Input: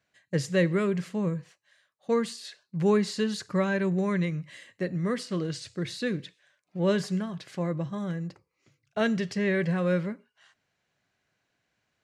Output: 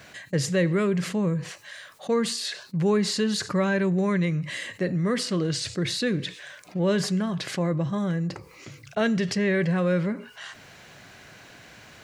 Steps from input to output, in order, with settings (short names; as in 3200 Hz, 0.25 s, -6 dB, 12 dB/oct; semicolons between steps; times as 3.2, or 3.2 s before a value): fast leveller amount 50%